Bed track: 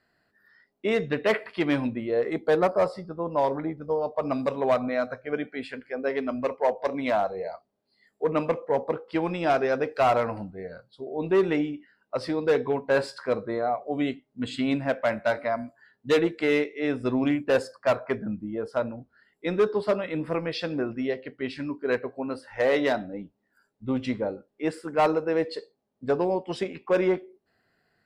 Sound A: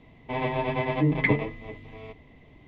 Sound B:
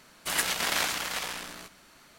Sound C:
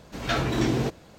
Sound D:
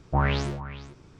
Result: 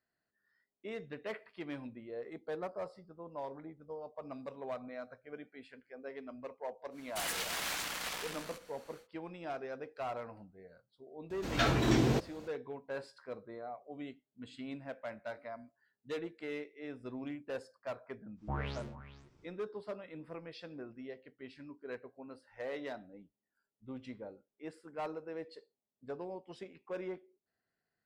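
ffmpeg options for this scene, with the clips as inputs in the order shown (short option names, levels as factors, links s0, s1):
-filter_complex "[0:a]volume=0.126[s0];[2:a]volume=26.6,asoftclip=hard,volume=0.0376,atrim=end=2.18,asetpts=PTS-STARTPTS,volume=0.562,afade=t=in:d=0.1,afade=t=out:st=2.08:d=0.1,adelay=304290S[s1];[3:a]atrim=end=1.18,asetpts=PTS-STARTPTS,volume=0.668,afade=t=in:d=0.004:c=hsin,afade=t=out:st=1.176:d=0.004:c=hsin,adelay=498330S[s2];[4:a]atrim=end=1.19,asetpts=PTS-STARTPTS,volume=0.188,afade=t=in:d=0.1,afade=t=out:st=1.09:d=0.1,adelay=18350[s3];[s0][s1][s2][s3]amix=inputs=4:normalize=0"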